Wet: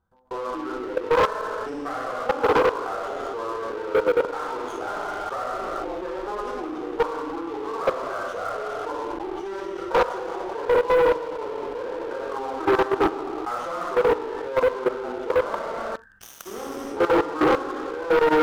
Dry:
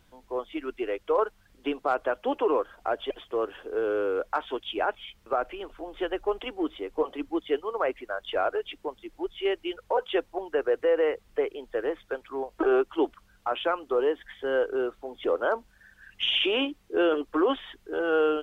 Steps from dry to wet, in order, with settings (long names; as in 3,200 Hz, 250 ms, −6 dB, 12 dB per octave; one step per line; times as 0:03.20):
phase distortion by the signal itself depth 0.28 ms
reverb whose tail is shaped and stops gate 480 ms falling, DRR −7.5 dB
output level in coarse steps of 18 dB
high shelf with overshoot 1,800 Hz −11 dB, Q 3
leveller curve on the samples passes 3
reversed playback
upward compression, threshold −23 dBFS
reversed playback
level −6.5 dB